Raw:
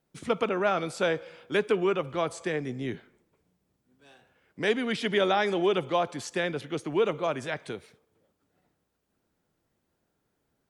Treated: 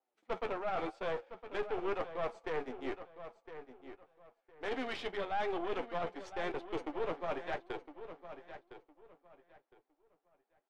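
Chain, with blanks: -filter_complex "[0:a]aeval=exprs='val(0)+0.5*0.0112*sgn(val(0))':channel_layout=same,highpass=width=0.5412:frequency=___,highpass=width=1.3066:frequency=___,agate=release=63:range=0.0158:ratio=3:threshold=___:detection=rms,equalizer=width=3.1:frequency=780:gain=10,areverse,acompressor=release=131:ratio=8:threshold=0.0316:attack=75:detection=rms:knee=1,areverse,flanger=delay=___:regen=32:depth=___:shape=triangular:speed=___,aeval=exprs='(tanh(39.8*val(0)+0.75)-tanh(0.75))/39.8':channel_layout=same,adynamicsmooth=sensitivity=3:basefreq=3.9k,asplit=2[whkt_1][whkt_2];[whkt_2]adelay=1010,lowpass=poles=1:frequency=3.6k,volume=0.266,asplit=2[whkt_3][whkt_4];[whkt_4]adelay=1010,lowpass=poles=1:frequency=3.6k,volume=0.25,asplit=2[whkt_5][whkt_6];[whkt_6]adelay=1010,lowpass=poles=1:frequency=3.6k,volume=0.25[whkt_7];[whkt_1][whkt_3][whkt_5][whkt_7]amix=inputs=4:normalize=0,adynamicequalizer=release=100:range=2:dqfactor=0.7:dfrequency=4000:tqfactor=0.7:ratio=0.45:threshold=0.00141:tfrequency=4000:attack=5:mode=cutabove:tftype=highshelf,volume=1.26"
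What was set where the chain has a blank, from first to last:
300, 300, 0.0224, 7.5, 4.8, 0.91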